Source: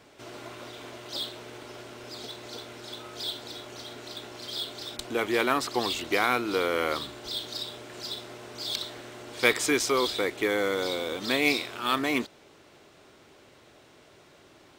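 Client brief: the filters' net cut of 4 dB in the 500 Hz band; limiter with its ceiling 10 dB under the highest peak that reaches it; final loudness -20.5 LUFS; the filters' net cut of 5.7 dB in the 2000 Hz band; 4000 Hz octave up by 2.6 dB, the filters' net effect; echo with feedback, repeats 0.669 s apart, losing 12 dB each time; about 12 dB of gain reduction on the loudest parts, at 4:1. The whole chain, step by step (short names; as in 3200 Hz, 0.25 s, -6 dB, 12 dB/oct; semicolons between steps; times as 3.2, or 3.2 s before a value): bell 500 Hz -4.5 dB; bell 2000 Hz -8.5 dB; bell 4000 Hz +5.5 dB; compressor 4:1, threshold -35 dBFS; limiter -26.5 dBFS; feedback echo 0.669 s, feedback 25%, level -12 dB; gain +18 dB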